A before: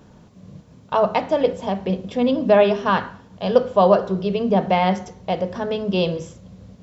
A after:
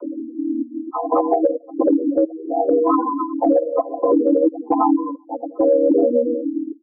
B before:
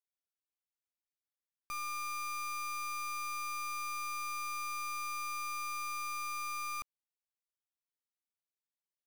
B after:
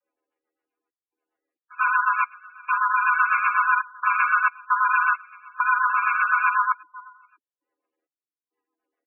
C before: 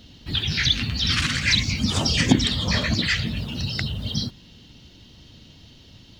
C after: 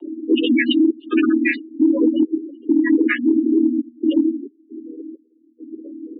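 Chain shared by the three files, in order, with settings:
vocoder on a held chord major triad, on D#3; feedback delay 89 ms, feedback 56%, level -14.5 dB; short-mantissa float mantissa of 4-bit; trance gate "xxxx.xx.xx..x" 67 bpm -24 dB; spectral gate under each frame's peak -10 dB strong; mistuned SSB +87 Hz 240–2500 Hz; rotary cabinet horn 8 Hz; compression 12:1, threshold -36 dBFS; dynamic bell 500 Hz, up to +4 dB, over -53 dBFS, Q 7.1; gain riding within 4 dB 2 s; loudness maximiser +31.5 dB; trim -6.5 dB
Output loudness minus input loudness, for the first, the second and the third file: +1.0 LU, +16.5 LU, +4.0 LU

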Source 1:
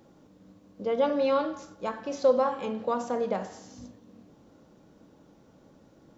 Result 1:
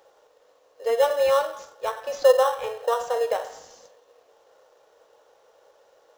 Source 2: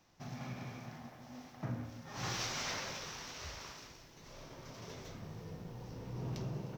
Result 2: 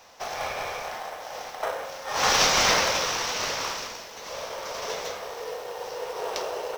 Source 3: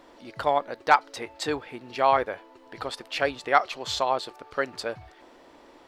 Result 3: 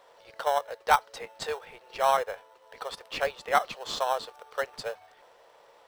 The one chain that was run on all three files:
elliptic high-pass 460 Hz, stop band 50 dB; in parallel at -8.5 dB: sample-and-hold 19×; on the sum: peak normalisation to -6 dBFS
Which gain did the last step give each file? +3.5 dB, +19.0 dB, -4.0 dB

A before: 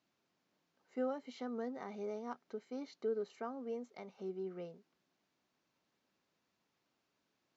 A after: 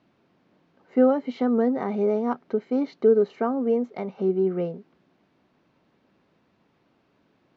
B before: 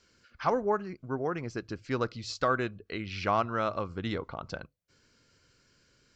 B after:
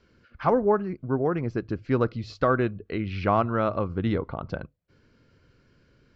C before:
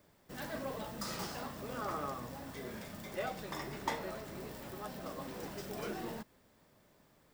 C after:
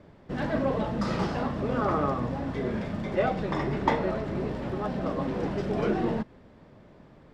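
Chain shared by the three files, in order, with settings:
low-pass 3.3 kHz 12 dB/octave; tilt shelf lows +4.5 dB, about 690 Hz; peak normalisation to -9 dBFS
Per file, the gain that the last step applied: +17.0 dB, +5.0 dB, +12.5 dB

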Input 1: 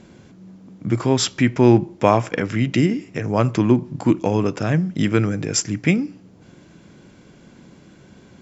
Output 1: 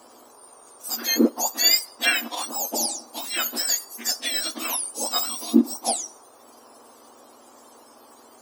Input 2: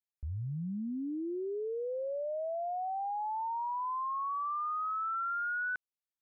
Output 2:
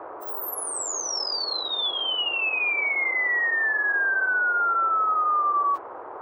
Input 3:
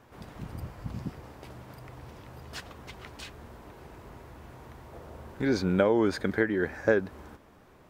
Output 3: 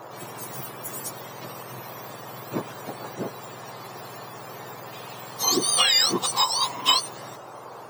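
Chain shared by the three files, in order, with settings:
spectrum inverted on a logarithmic axis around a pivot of 1.3 kHz; band noise 340–1200 Hz -51 dBFS; normalise loudness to -23 LUFS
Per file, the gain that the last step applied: -1.5 dB, +12.5 dB, +9.5 dB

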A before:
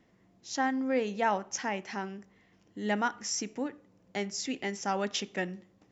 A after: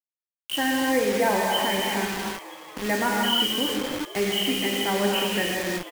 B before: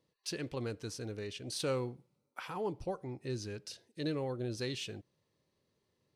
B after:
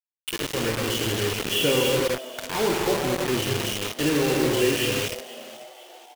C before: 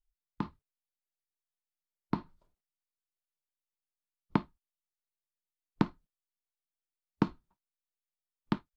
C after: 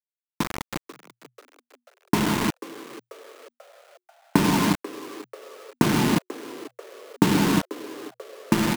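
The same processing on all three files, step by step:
knee-point frequency compression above 2.4 kHz 4:1; level rider gain up to 7 dB; hum notches 60/120 Hz; comb of notches 1.3 kHz; gated-style reverb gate 380 ms flat, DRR -2 dB; flange 0.33 Hz, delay 8.1 ms, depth 2.6 ms, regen +57%; distance through air 120 m; in parallel at -0.5 dB: peak limiter -21 dBFS; on the sum: bit crusher 5-bit; peaking EQ 730 Hz -3 dB 0.86 oct; frequency-shifting echo 489 ms, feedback 50%, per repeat +120 Hz, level -17 dB; normalise loudness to -24 LUFS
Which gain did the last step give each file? -1.0 dB, +4.0 dB, +5.5 dB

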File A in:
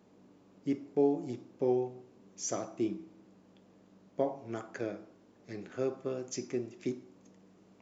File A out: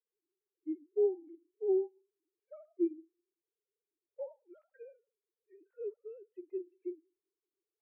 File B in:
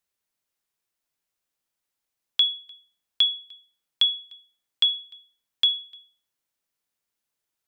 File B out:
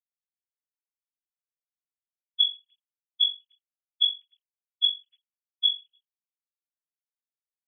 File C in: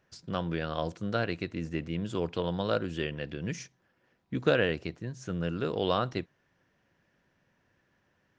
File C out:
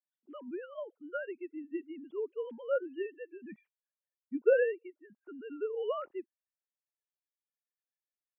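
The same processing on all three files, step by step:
formants replaced by sine waves; spectral contrast expander 1.5:1; trim -2 dB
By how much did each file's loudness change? -1.5 LU, -2.0 LU, -3.5 LU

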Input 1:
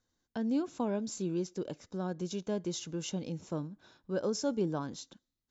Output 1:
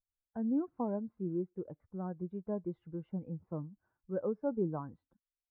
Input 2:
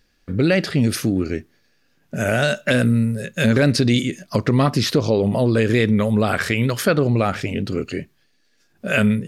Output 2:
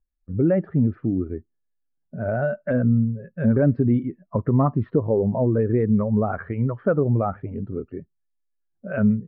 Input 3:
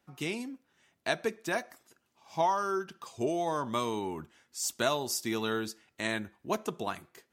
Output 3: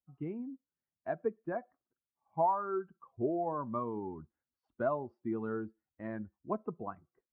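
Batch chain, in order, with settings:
expander on every frequency bin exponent 1.5; inverse Chebyshev low-pass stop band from 6.7 kHz, stop band 80 dB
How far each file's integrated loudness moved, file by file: -2.5 LU, -3.5 LU, -4.0 LU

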